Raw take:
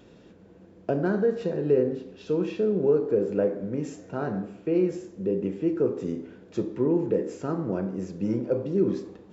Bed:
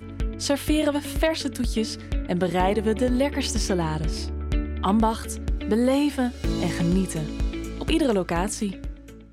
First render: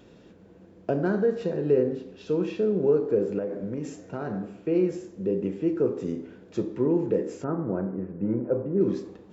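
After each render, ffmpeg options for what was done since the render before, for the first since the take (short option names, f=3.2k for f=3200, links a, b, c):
-filter_complex "[0:a]asettb=1/sr,asplit=3[a][b][c];[a]atrim=end=3.384[d];[b]atrim=start=3.38:end=4.51,asetpts=PTS-STARTPTS,afade=t=in:d=0.004:c=qsin,afade=t=out:st=1.126:d=0.004:c=qsin,acompressor=threshold=-26dB:ratio=6:attack=3.2:release=140:knee=1:detection=peak[e];[c]atrim=start=4.506[f];[d][e]acrossfade=d=0.004:c1=hsin:c2=qsin[g];[g][f]acrossfade=d=0.004:c1=qsin:c2=hsin,asettb=1/sr,asplit=3[h][i][j];[h]atrim=end=7.444[k];[i]atrim=start=7.44:end=8.81,asetpts=PTS-STARTPTS,afade=t=in:d=0.004:c=qsin,afade=t=out:st=1.366:d=0.004:c=qsin,lowpass=f=1.8k:w=0.5412,lowpass=f=1.8k:w=1.3066[l];[j]atrim=start=8.806[m];[k][l]acrossfade=d=0.004:c1=hsin:c2=qsin[n];[n][m]acrossfade=d=0.004:c1=qsin:c2=hsin"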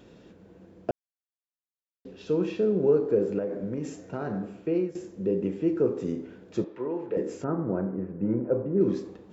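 -filter_complex "[0:a]asettb=1/sr,asplit=3[a][b][c];[a]atrim=end=6.644[d];[b]atrim=start=6.64:end=7.17,asetpts=PTS-STARTPTS,afade=t=in:d=0.004:c=qsin,afade=t=out:st=0.526:d=0.004:c=qsin,acrossover=split=460 4000:gain=0.158 1 0.141[e][f][g];[e][f][g]amix=inputs=3:normalize=0[h];[c]atrim=start=7.166[i];[d][h]acrossfade=d=0.004:c1=hsin:c2=qsin[j];[j][i]acrossfade=d=0.004:c1=qsin:c2=hsin,asplit=4[k][l][m][n];[k]atrim=end=0.91,asetpts=PTS-STARTPTS,afade=t=out:st=0.906:d=0.004:c=hsin[o];[l]atrim=start=0.91:end=2.05,asetpts=PTS-STARTPTS,volume=0[p];[m]atrim=start=2.05:end=4.95,asetpts=PTS-STARTPTS,afade=t=in:d=0.004:c=hsin,afade=t=out:st=2.5:d=0.4:c=qsin:silence=0.199526[q];[n]atrim=start=4.95,asetpts=PTS-STARTPTS,afade=t=in:d=0.004:c=hsin:silence=0.199526[r];[o][p][q][r]concat=n=4:v=0:a=1"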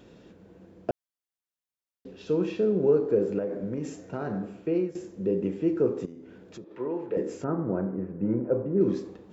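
-filter_complex "[0:a]asettb=1/sr,asplit=3[a][b][c];[a]atrim=end=6.054[d];[b]atrim=start=6.05:end=6.71,asetpts=PTS-STARTPTS,afade=t=in:d=0.004:c=qsin,afade=t=out:st=0.656:d=0.004:c=qsin,acompressor=threshold=-44dB:ratio=3:attack=3.2:release=140:knee=1:detection=peak[e];[c]atrim=start=6.706[f];[d][e]acrossfade=d=0.004:c1=hsin:c2=qsin[g];[g][f]acrossfade=d=0.004:c1=qsin:c2=hsin"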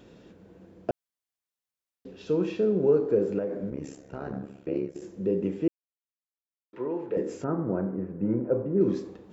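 -filter_complex "[0:a]asettb=1/sr,asplit=3[a][b][c];[a]atrim=end=3.704[d];[b]atrim=start=3.7:end=5.02,asetpts=PTS-STARTPTS,afade=t=in:d=0.004:c=qsin,afade=t=out:st=1.316:d=0.004:c=qsin,tremolo=f=69:d=0.889[e];[c]atrim=start=5.016[f];[d][e]acrossfade=d=0.004:c1=hsin:c2=qsin[g];[g][f]acrossfade=d=0.004:c1=qsin:c2=hsin,asplit=3[h][i][j];[h]atrim=end=5.68,asetpts=PTS-STARTPTS,afade=t=out:st=5.676:d=0.004:c=hsin[k];[i]atrim=start=5.68:end=6.73,asetpts=PTS-STARTPTS,volume=0[l];[j]atrim=start=6.73,asetpts=PTS-STARTPTS,afade=t=in:d=0.004:c=hsin[m];[k][l][m]concat=n=3:v=0:a=1"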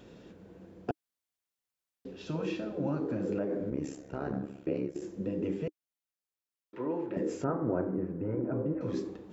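-af "afftfilt=real='re*lt(hypot(re,im),0.282)':imag='im*lt(hypot(re,im),0.282)':win_size=1024:overlap=0.75,adynamicequalizer=threshold=0.00251:dfrequency=310:dqfactor=5:tfrequency=310:tqfactor=5:attack=5:release=100:ratio=0.375:range=2:mode=boostabove:tftype=bell"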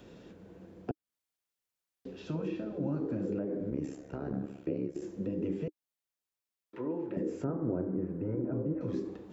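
-filter_complex "[0:a]acrossover=split=610|2800[a][b][c];[c]alimiter=level_in=24.5dB:limit=-24dB:level=0:latency=1:release=276,volume=-24.5dB[d];[a][b][d]amix=inputs=3:normalize=0,acrossover=split=460[e][f];[f]acompressor=threshold=-46dB:ratio=4[g];[e][g]amix=inputs=2:normalize=0"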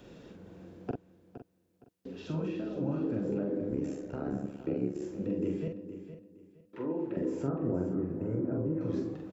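-filter_complex "[0:a]asplit=2[a][b];[b]adelay=44,volume=-4dB[c];[a][c]amix=inputs=2:normalize=0,aecho=1:1:465|930|1395:0.266|0.0665|0.0166"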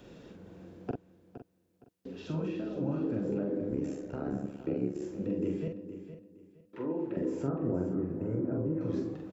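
-af anull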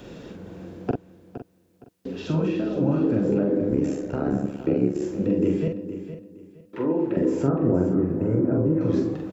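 -af "volume=10.5dB"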